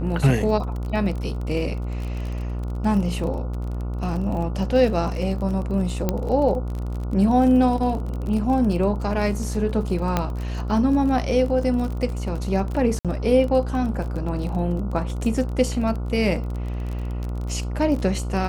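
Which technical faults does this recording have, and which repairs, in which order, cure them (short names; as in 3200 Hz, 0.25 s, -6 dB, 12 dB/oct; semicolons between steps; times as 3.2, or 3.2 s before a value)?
buzz 60 Hz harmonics 24 -27 dBFS
crackle 32/s -29 dBFS
6.09 pop -8 dBFS
10.17 pop -7 dBFS
12.99–13.05 gap 57 ms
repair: de-click; de-hum 60 Hz, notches 24; interpolate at 12.99, 57 ms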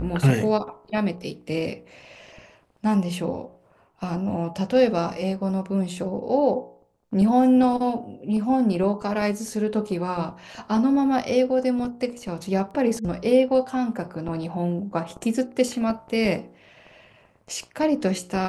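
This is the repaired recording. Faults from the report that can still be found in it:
none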